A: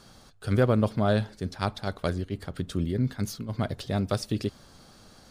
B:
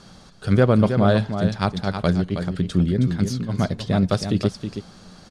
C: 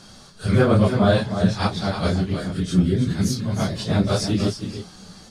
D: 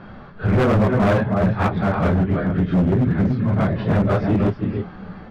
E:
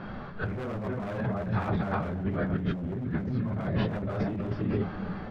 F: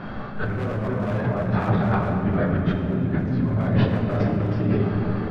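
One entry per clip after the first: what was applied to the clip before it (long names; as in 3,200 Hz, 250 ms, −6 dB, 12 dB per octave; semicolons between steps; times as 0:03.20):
low-pass filter 8,100 Hz 12 dB per octave; parametric band 180 Hz +10.5 dB 0.21 octaves; on a send: single-tap delay 319 ms −8 dB; on the sum: level +5.5 dB
random phases in long frames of 100 ms; high-shelf EQ 4,300 Hz +8.5 dB
low-pass filter 2,100 Hz 24 dB per octave; in parallel at +0.5 dB: downward compressor 8 to 1, threshold −27 dBFS, peak gain reduction 15 dB; on the sum: hard clipping −16 dBFS, distortion −9 dB; level +2.5 dB
mains-hum notches 50/100 Hz; on a send at −23 dB: convolution reverb RT60 4.3 s, pre-delay 15 ms; on the sum: compressor whose output falls as the input rises −25 dBFS, ratio −1; level −5.5 dB
rectangular room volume 200 cubic metres, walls hard, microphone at 0.36 metres; level +5 dB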